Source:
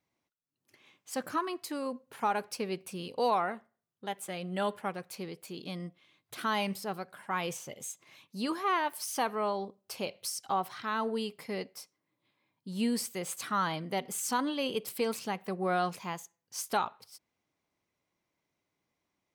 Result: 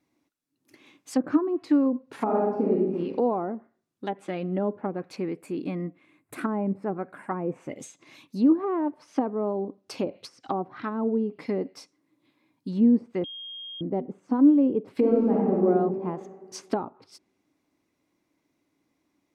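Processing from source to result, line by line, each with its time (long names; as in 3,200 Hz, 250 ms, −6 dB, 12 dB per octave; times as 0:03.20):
0:02.16–0:02.93: thrown reverb, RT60 0.94 s, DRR −4 dB
0:05.16–0:07.79: flat-topped bell 4,400 Hz −12 dB 1.3 octaves
0:13.24–0:13.81: beep over 3,240 Hz −9.5 dBFS
0:14.95–0:15.64: thrown reverb, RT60 1.6 s, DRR −5.5 dB
whole clip: treble cut that deepens with the level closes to 570 Hz, closed at −30 dBFS; parametric band 290 Hz +13.5 dB 0.6 octaves; notch filter 3,100 Hz, Q 18; level +5 dB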